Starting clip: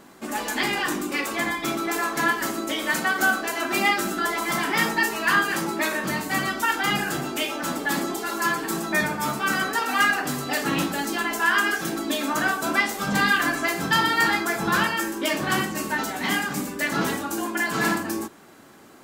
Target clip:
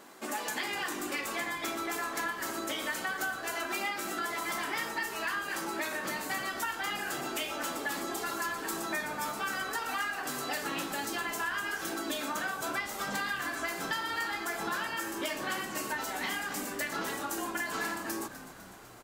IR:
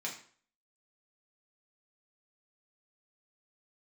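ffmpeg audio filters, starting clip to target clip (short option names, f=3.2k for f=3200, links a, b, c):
-filter_complex "[0:a]bass=f=250:g=-13,treble=f=4k:g=1,acompressor=threshold=-30dB:ratio=6,asplit=7[a][b][c][d][e][f][g];[b]adelay=251,afreqshift=-71,volume=-13.5dB[h];[c]adelay=502,afreqshift=-142,volume=-18.2dB[i];[d]adelay=753,afreqshift=-213,volume=-23dB[j];[e]adelay=1004,afreqshift=-284,volume=-27.7dB[k];[f]adelay=1255,afreqshift=-355,volume=-32.4dB[l];[g]adelay=1506,afreqshift=-426,volume=-37.2dB[m];[a][h][i][j][k][l][m]amix=inputs=7:normalize=0,volume=-2dB"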